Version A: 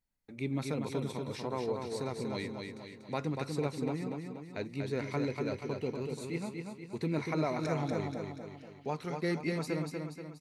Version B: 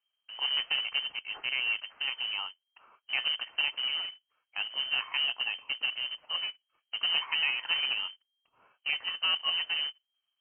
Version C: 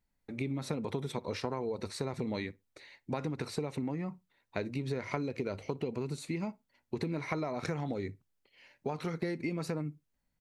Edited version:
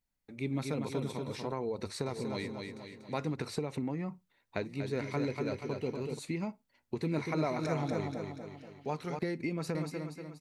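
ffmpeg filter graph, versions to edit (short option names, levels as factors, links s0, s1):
-filter_complex "[2:a]asplit=4[s0][s1][s2][s3];[0:a]asplit=5[s4][s5][s6][s7][s8];[s4]atrim=end=1.522[s9];[s0]atrim=start=1.518:end=2.062[s10];[s5]atrim=start=2.058:end=3.342[s11];[s1]atrim=start=3.338:end=4.622[s12];[s6]atrim=start=4.618:end=6.192[s13];[s2]atrim=start=6.188:end=6.982[s14];[s7]atrim=start=6.978:end=9.192[s15];[s3]atrim=start=9.188:end=9.752[s16];[s8]atrim=start=9.748[s17];[s9][s10]acrossfade=d=0.004:c1=hsin:c2=hsin[s18];[s18][s11]acrossfade=d=0.004:c1=hsin:c2=hsin[s19];[s19][s12]acrossfade=d=0.004:c1=hsin:c2=hsin[s20];[s20][s13]acrossfade=d=0.004:c1=hsin:c2=hsin[s21];[s21][s14]acrossfade=d=0.004:c1=hsin:c2=hsin[s22];[s22][s15]acrossfade=d=0.004:c1=hsin:c2=hsin[s23];[s23][s16]acrossfade=d=0.004:c1=hsin:c2=hsin[s24];[s24][s17]acrossfade=d=0.004:c1=hsin:c2=hsin"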